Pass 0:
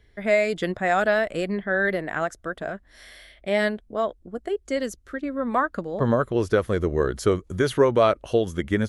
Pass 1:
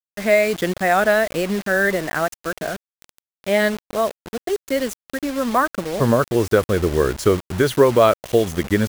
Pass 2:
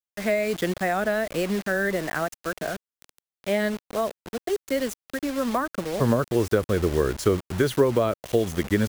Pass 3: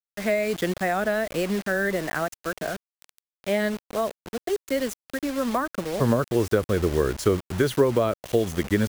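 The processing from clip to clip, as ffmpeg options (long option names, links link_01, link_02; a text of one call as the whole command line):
ffmpeg -i in.wav -af "acrusher=bits=5:mix=0:aa=0.000001,volume=4.5dB" out.wav
ffmpeg -i in.wav -filter_complex "[0:a]acrossover=split=400[link_01][link_02];[link_02]acompressor=threshold=-19dB:ratio=10[link_03];[link_01][link_03]amix=inputs=2:normalize=0,volume=-3.5dB" out.wav
ffmpeg -i in.wav -af "acrusher=bits=7:mix=0:aa=0.5" out.wav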